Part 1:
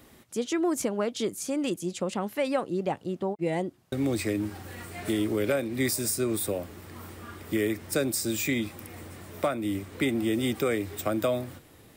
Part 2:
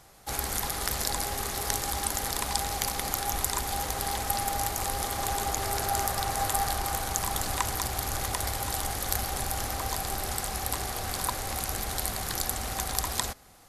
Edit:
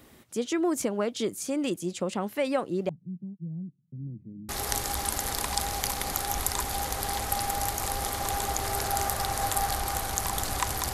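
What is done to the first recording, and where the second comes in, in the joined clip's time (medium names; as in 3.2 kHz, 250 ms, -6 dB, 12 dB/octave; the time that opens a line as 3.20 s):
part 1
2.89–4.49 s: Butterworth band-pass 160 Hz, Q 2.5
4.49 s: go over to part 2 from 1.47 s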